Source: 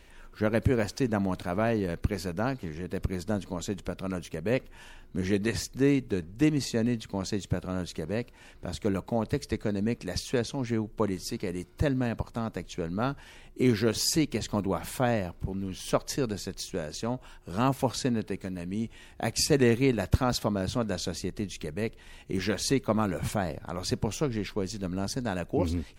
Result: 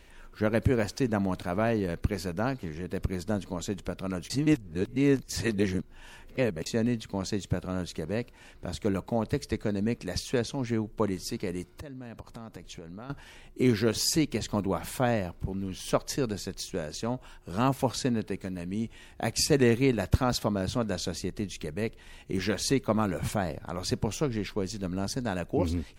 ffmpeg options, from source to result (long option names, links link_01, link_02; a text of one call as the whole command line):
ffmpeg -i in.wav -filter_complex "[0:a]asettb=1/sr,asplit=3[link_01][link_02][link_03];[link_01]atrim=end=11.704[link_04];[link_02]atrim=start=11.7:end=13.1,asetpts=PTS-STARTPTS,afade=type=in:duration=0.004:curve=qsin,afade=type=out:start_time=1.396:duration=0.004:curve=qsin,acompressor=threshold=-38dB:ratio=12:attack=3.2:release=140:knee=1:detection=peak[link_05];[link_03]atrim=start=13.096[link_06];[link_04][link_05]acrossfade=duration=0.004:curve1=hsin:curve2=qsin[link_07];[link_07][link_06]acrossfade=duration=0.004:curve1=qsin:curve2=hsin,asplit=3[link_08][link_09][link_10];[link_08]atrim=end=4.302[link_11];[link_09]atrim=start=4.298:end=6.662,asetpts=PTS-STARTPTS,areverse[link_12];[link_10]atrim=start=6.658[link_13];[link_11][link_12]acrossfade=duration=0.004:curve1=hsin:curve2=hsin[link_14];[link_14][link_13]acrossfade=duration=0.004:curve1=hsin:curve2=hsin" out.wav